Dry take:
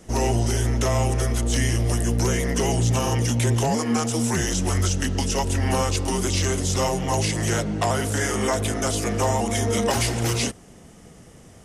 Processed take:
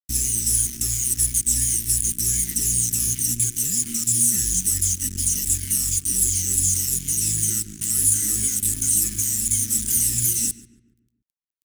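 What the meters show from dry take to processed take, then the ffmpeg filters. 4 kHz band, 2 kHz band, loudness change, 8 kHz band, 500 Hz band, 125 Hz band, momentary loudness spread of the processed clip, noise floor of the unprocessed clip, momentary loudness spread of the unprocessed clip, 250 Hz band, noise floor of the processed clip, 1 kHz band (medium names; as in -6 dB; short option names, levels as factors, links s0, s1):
-3.0 dB, -13.0 dB, +3.5 dB, +11.0 dB, under -20 dB, -9.0 dB, 4 LU, -47 dBFS, 2 LU, -10.5 dB, -74 dBFS, under -30 dB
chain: -filter_complex "[0:a]afftfilt=real='re*pow(10,11/40*sin(2*PI*(1.9*log(max(b,1)*sr/1024/100)/log(2)-(-2.8)*(pts-256)/sr)))':imag='im*pow(10,11/40*sin(2*PI*(1.9*log(max(b,1)*sr/1024/100)/log(2)-(-2.8)*(pts-256)/sr)))':win_size=1024:overlap=0.75,lowshelf=f=63:g=4.5,acrossover=split=1300[s0][s1];[s0]acompressor=threshold=0.0447:ratio=10[s2];[s1]alimiter=limit=0.075:level=0:latency=1:release=42[s3];[s2][s3]amix=inputs=2:normalize=0,aexciter=amount=7.3:drive=6:freq=6300,acrusher=bits=3:mix=0:aa=0.5,asuperstop=centerf=690:order=8:qfactor=0.67,equalizer=f=1300:w=0.47:g=-14.5,asplit=2[s4][s5];[s5]adelay=142,lowpass=f=1900:p=1,volume=0.224,asplit=2[s6][s7];[s7]adelay=142,lowpass=f=1900:p=1,volume=0.47,asplit=2[s8][s9];[s9]adelay=142,lowpass=f=1900:p=1,volume=0.47,asplit=2[s10][s11];[s11]adelay=142,lowpass=f=1900:p=1,volume=0.47,asplit=2[s12][s13];[s13]adelay=142,lowpass=f=1900:p=1,volume=0.47[s14];[s6][s8][s10][s12][s14]amix=inputs=5:normalize=0[s15];[s4][s15]amix=inputs=2:normalize=0"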